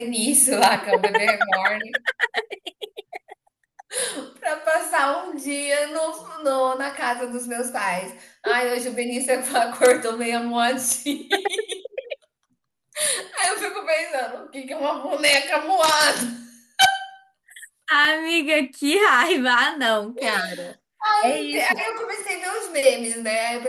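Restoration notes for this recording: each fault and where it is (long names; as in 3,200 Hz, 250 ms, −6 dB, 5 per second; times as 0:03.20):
0:18.05: drop-out 2.3 ms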